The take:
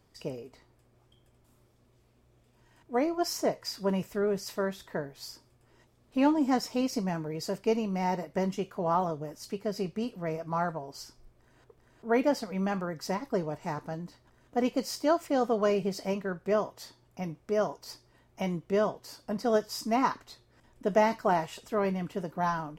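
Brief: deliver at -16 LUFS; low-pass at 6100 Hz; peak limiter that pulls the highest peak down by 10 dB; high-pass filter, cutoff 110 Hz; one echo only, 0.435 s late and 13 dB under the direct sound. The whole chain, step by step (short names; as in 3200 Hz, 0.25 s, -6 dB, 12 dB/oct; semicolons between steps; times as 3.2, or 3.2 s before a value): HPF 110 Hz; LPF 6100 Hz; limiter -22 dBFS; echo 0.435 s -13 dB; gain +18 dB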